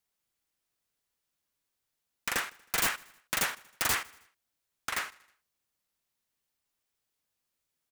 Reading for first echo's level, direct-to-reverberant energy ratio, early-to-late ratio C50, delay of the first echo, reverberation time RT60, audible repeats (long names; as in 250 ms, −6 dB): −23.0 dB, no reverb audible, no reverb audible, 79 ms, no reverb audible, 3